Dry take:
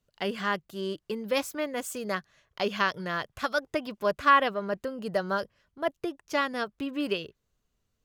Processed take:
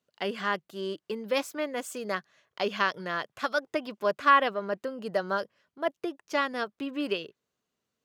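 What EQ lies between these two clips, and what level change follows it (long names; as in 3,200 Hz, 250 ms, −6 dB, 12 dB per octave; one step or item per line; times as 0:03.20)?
high-pass filter 210 Hz 12 dB per octave
high-shelf EQ 8,800 Hz −7 dB
0.0 dB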